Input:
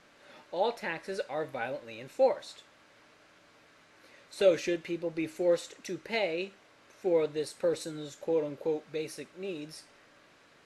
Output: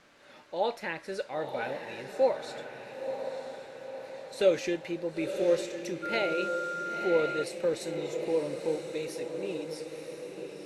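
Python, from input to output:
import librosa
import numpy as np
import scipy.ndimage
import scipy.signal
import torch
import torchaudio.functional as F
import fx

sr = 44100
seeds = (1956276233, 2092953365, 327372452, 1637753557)

y = fx.echo_diffused(x, sr, ms=985, feedback_pct=55, wet_db=-7.0)
y = fx.dmg_tone(y, sr, hz=1400.0, level_db=-33.0, at=(6.02, 7.42), fade=0.02)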